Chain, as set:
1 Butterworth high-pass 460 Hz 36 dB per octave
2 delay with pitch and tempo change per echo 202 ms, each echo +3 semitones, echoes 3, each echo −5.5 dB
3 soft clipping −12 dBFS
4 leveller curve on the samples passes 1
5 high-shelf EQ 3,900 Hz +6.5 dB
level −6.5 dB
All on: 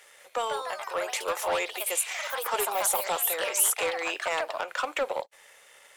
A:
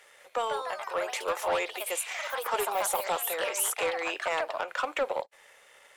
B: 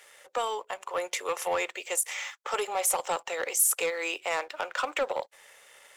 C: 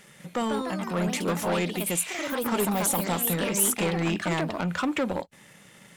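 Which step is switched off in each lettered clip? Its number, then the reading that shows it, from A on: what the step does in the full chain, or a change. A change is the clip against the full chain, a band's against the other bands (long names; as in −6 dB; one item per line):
5, 8 kHz band −5.0 dB
2, 4 kHz band −2.0 dB
1, 250 Hz band +21.5 dB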